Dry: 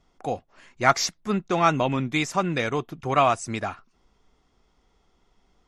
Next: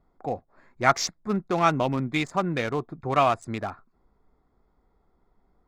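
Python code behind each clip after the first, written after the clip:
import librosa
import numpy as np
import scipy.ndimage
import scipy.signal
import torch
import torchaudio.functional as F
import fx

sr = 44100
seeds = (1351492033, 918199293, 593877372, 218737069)

y = fx.wiener(x, sr, points=15)
y = y * 10.0 ** (-1.0 / 20.0)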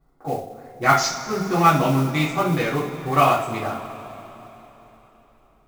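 y = fx.rev_double_slope(x, sr, seeds[0], early_s=0.38, late_s=3.8, knee_db=-18, drr_db=-8.0)
y = fx.mod_noise(y, sr, seeds[1], snr_db=23)
y = y * 10.0 ** (-4.0 / 20.0)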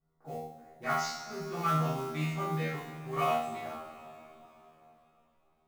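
y = fx.comb_fb(x, sr, f0_hz=79.0, decay_s=0.57, harmonics='all', damping=0.0, mix_pct=100)
y = y * 10.0 ** (-2.0 / 20.0)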